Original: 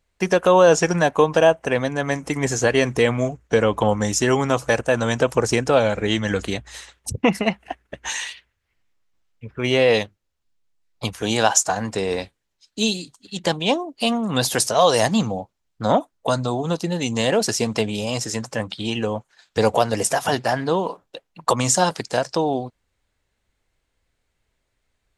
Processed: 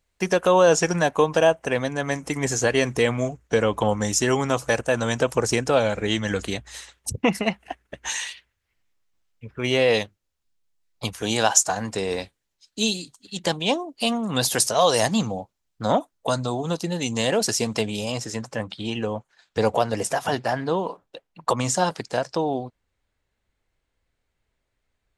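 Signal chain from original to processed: high shelf 4400 Hz +4.5 dB, from 18.12 s -5 dB; gain -3 dB

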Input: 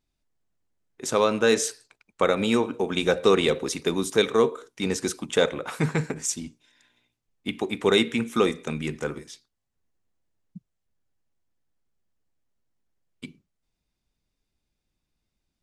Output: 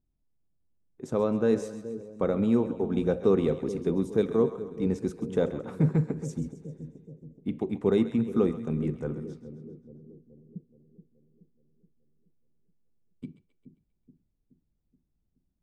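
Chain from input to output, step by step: EQ curve 180 Hz 0 dB, 720 Hz -10 dB, 2900 Hz -24 dB; split-band echo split 530 Hz, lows 0.425 s, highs 0.133 s, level -12.5 dB; gain +2.5 dB

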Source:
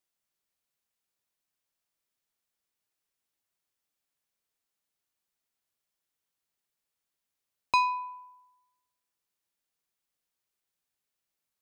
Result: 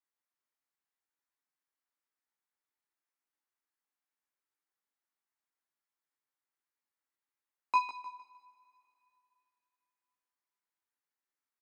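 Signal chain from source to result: ladder high-pass 230 Hz, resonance 45%; band shelf 1300 Hz +8.5 dB; on a send: feedback echo 0.153 s, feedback 35%, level -11 dB; on the sum: chorus 0.89 Hz, delay 16.5 ms, depth 5 ms; two-slope reverb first 0.23 s, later 3.1 s, from -18 dB, DRR 14.5 dB

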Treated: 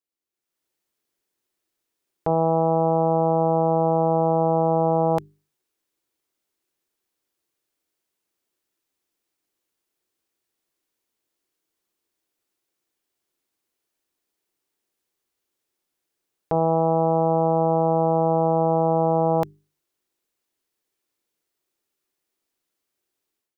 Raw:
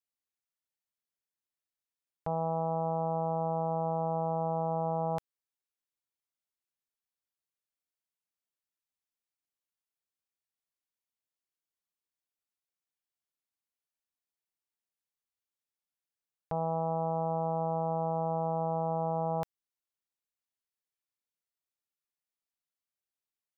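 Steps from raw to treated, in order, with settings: AGC gain up to 12 dB; limiter -14 dBFS, peak gain reduction 3 dB; bell 350 Hz +12.5 dB 0.77 oct; notches 50/100/150/200/250/300/350/400 Hz

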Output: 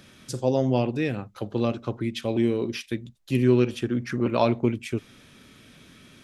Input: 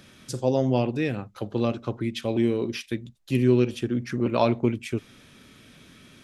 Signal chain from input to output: 3.43–4.34 bell 1300 Hz +4 dB 1.5 oct

